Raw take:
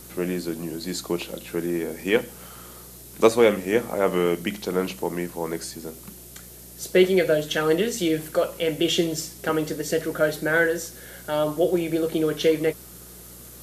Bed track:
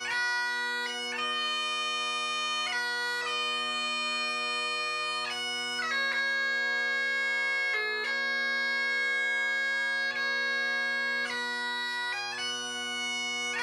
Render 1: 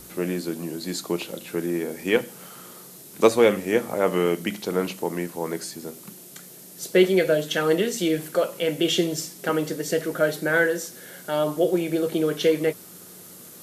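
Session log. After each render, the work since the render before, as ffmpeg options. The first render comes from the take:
ffmpeg -i in.wav -af "bandreject=frequency=60:width_type=h:width=4,bandreject=frequency=120:width_type=h:width=4" out.wav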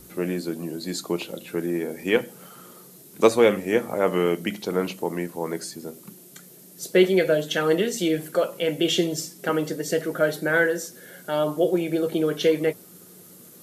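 ffmpeg -i in.wav -af "afftdn=noise_reduction=6:noise_floor=-45" out.wav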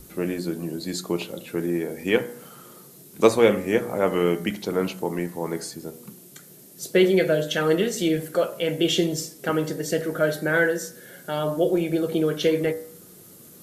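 ffmpeg -i in.wav -af "lowshelf=frequency=97:gain=11.5,bandreject=frequency=60.27:width_type=h:width=4,bandreject=frequency=120.54:width_type=h:width=4,bandreject=frequency=180.81:width_type=h:width=4,bandreject=frequency=241.08:width_type=h:width=4,bandreject=frequency=301.35:width_type=h:width=4,bandreject=frequency=361.62:width_type=h:width=4,bandreject=frequency=421.89:width_type=h:width=4,bandreject=frequency=482.16:width_type=h:width=4,bandreject=frequency=542.43:width_type=h:width=4,bandreject=frequency=602.7:width_type=h:width=4,bandreject=frequency=662.97:width_type=h:width=4,bandreject=frequency=723.24:width_type=h:width=4,bandreject=frequency=783.51:width_type=h:width=4,bandreject=frequency=843.78:width_type=h:width=4,bandreject=frequency=904.05:width_type=h:width=4,bandreject=frequency=964.32:width_type=h:width=4,bandreject=frequency=1024.59:width_type=h:width=4,bandreject=frequency=1084.86:width_type=h:width=4,bandreject=frequency=1145.13:width_type=h:width=4,bandreject=frequency=1205.4:width_type=h:width=4,bandreject=frequency=1265.67:width_type=h:width=4,bandreject=frequency=1325.94:width_type=h:width=4,bandreject=frequency=1386.21:width_type=h:width=4,bandreject=frequency=1446.48:width_type=h:width=4,bandreject=frequency=1506.75:width_type=h:width=4,bandreject=frequency=1567.02:width_type=h:width=4,bandreject=frequency=1627.29:width_type=h:width=4,bandreject=frequency=1687.56:width_type=h:width=4,bandreject=frequency=1747.83:width_type=h:width=4,bandreject=frequency=1808.1:width_type=h:width=4,bandreject=frequency=1868.37:width_type=h:width=4,bandreject=frequency=1928.64:width_type=h:width=4,bandreject=frequency=1988.91:width_type=h:width=4,bandreject=frequency=2049.18:width_type=h:width=4,bandreject=frequency=2109.45:width_type=h:width=4,bandreject=frequency=2169.72:width_type=h:width=4" out.wav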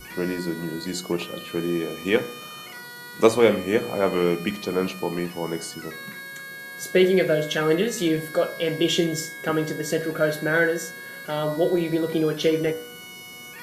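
ffmpeg -i in.wav -i bed.wav -filter_complex "[1:a]volume=-9.5dB[link_01];[0:a][link_01]amix=inputs=2:normalize=0" out.wav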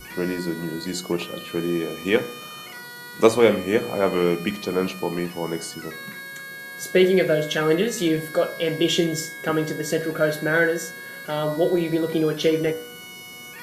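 ffmpeg -i in.wav -af "volume=1dB" out.wav

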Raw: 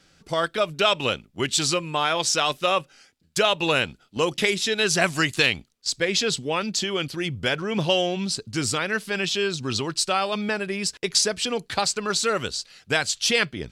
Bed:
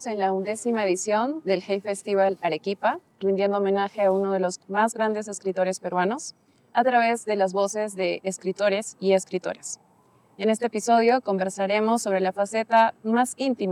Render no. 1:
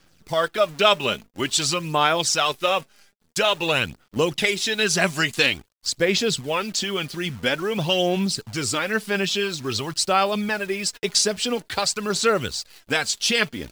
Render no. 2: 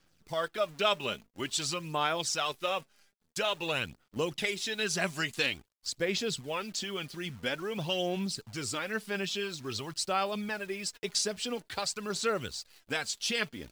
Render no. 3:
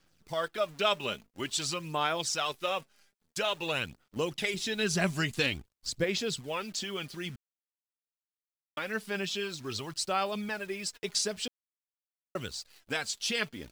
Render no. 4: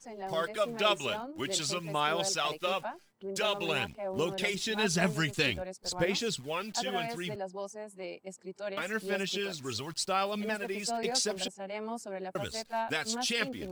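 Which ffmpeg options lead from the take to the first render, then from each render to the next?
ffmpeg -i in.wav -af "acrusher=bits=8:dc=4:mix=0:aa=0.000001,aphaser=in_gain=1:out_gain=1:delay=5:decay=0.44:speed=0.49:type=sinusoidal" out.wav
ffmpeg -i in.wav -af "volume=-10.5dB" out.wav
ffmpeg -i in.wav -filter_complex "[0:a]asettb=1/sr,asplit=3[link_01][link_02][link_03];[link_01]atrim=end=4.544[link_04];[link_02]atrim=start=4.54:end=6.04,asetpts=PTS-STARTPTS,afade=type=in:duration=0.004:curve=qsin,afade=type=out:start_time=1.496:duration=0.004:curve=qsin,lowshelf=frequency=260:gain=11[link_05];[link_03]atrim=start=6.036[link_06];[link_04][link_05]acrossfade=duration=0.004:curve1=hsin:curve2=qsin[link_07];[link_07][link_06]acrossfade=duration=0.004:curve1=qsin:curve2=hsin,asplit=5[link_08][link_09][link_10][link_11][link_12];[link_08]atrim=end=7.36,asetpts=PTS-STARTPTS,afade=type=out:start_time=7.356:duration=0.004:curve=hsin[link_13];[link_09]atrim=start=7.36:end=8.77,asetpts=PTS-STARTPTS,volume=0[link_14];[link_10]atrim=start=8.77:end=11.48,asetpts=PTS-STARTPTS,afade=type=in:duration=0.004:curve=hsin,afade=type=out:start_time=2.706:duration=0.004:curve=hsin[link_15];[link_11]atrim=start=11.48:end=12.35,asetpts=PTS-STARTPTS,volume=0[link_16];[link_12]atrim=start=12.35,asetpts=PTS-STARTPTS,afade=type=in:duration=0.004:curve=hsin[link_17];[link_13][link_14][link_15][link_16][link_17]concat=n=5:v=0:a=1" out.wav
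ffmpeg -i in.wav -i bed.wav -filter_complex "[1:a]volume=-16dB[link_01];[0:a][link_01]amix=inputs=2:normalize=0" out.wav

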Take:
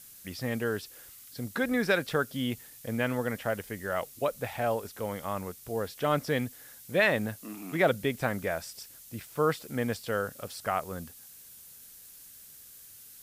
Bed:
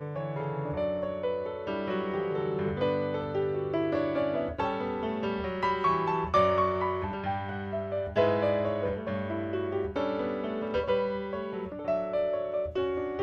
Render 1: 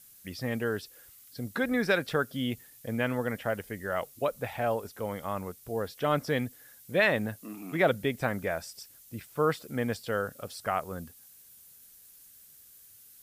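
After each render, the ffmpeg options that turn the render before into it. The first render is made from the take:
ffmpeg -i in.wav -af "afftdn=noise_reduction=6:noise_floor=-51" out.wav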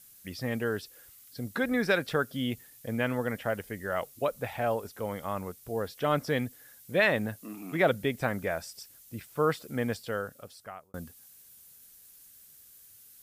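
ffmpeg -i in.wav -filter_complex "[0:a]asplit=2[link_01][link_02];[link_01]atrim=end=10.94,asetpts=PTS-STARTPTS,afade=type=out:start_time=9.88:duration=1.06[link_03];[link_02]atrim=start=10.94,asetpts=PTS-STARTPTS,afade=type=in:duration=0.004:curve=hsin[link_04];[link_03][link_04]concat=n=2:v=0:a=1" out.wav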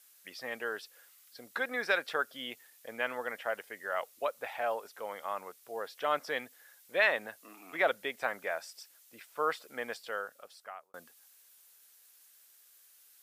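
ffmpeg -i in.wav -af "highpass=670,highshelf=frequency=5700:gain=-8" out.wav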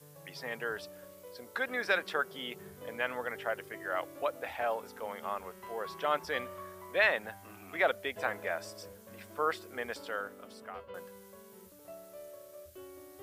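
ffmpeg -i in.wav -i bed.wav -filter_complex "[1:a]volume=-20dB[link_01];[0:a][link_01]amix=inputs=2:normalize=0" out.wav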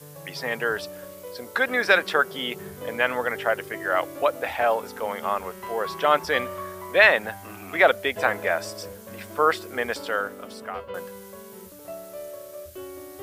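ffmpeg -i in.wav -af "volume=11dB" out.wav

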